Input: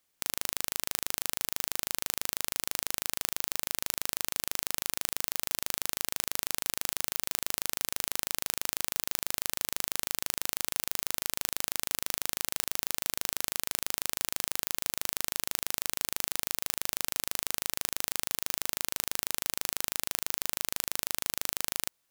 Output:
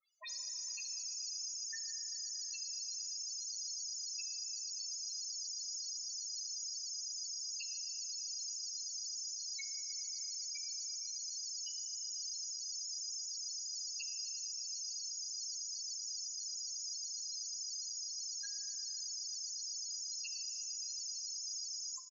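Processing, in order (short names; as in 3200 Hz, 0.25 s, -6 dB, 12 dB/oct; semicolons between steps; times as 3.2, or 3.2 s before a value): spectral delay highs late, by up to 0.106 s; in parallel at -10.5 dB: decimation with a swept rate 41×, swing 100% 3.4 Hz; on the sum: HPF 490 Hz 24 dB/oct; thin delay 0.153 s, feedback 55%, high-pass 5600 Hz, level -15 dB; hard clip -16.5 dBFS, distortion -6 dB; tilt shelf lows -8.5 dB, about 930 Hz; downsampling 16000 Hz; loudest bins only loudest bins 2; reverb RT60 3.6 s, pre-delay 12 ms, DRR 8.5 dB; gain +10 dB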